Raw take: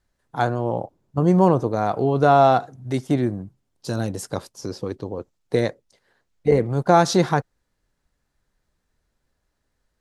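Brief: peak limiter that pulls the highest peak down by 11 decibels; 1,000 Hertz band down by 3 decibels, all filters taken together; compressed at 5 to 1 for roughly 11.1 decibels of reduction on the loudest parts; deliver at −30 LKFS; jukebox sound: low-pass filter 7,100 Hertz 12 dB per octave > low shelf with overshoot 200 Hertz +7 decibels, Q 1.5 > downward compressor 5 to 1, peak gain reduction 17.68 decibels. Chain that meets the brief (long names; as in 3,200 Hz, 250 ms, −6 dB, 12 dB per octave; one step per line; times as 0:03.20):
parametric band 1,000 Hz −4 dB
downward compressor 5 to 1, threshold −24 dBFS
brickwall limiter −23.5 dBFS
low-pass filter 7,100 Hz 12 dB per octave
low shelf with overshoot 200 Hz +7 dB, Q 1.5
downward compressor 5 to 1, threshold −40 dBFS
level +13.5 dB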